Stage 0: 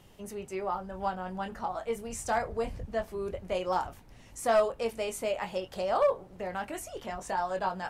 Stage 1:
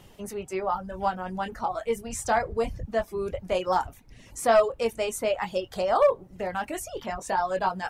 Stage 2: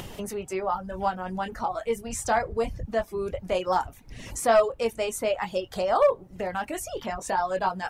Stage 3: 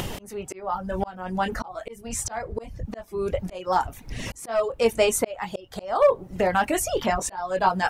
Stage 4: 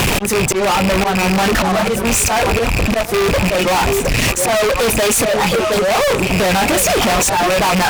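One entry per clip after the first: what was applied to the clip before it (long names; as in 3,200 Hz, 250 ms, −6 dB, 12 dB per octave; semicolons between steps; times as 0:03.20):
reverb reduction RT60 0.66 s; level +5.5 dB
upward compression, threshold −28 dBFS
volume swells 522 ms; level +8.5 dB
loose part that buzzes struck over −42 dBFS, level −21 dBFS; echo through a band-pass that steps 358 ms, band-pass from 150 Hz, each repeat 1.4 octaves, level −9 dB; fuzz pedal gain 44 dB, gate −50 dBFS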